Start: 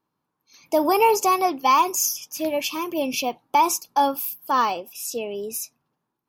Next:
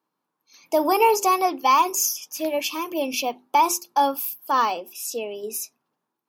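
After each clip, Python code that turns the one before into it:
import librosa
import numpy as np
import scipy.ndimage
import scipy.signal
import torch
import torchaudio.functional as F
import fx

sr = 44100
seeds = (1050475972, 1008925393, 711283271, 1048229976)

y = scipy.signal.sosfilt(scipy.signal.butter(2, 220.0, 'highpass', fs=sr, output='sos'), x)
y = fx.hum_notches(y, sr, base_hz=50, count=8)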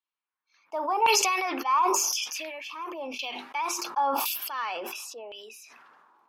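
y = fx.filter_lfo_bandpass(x, sr, shape='saw_down', hz=0.94, low_hz=820.0, high_hz=3300.0, q=2.1)
y = fx.sustainer(y, sr, db_per_s=24.0)
y = F.gain(torch.from_numpy(y), -3.0).numpy()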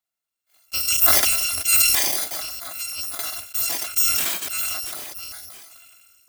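y = fx.bit_reversed(x, sr, seeds[0], block=256)
y = F.gain(torch.from_numpy(y), 6.0).numpy()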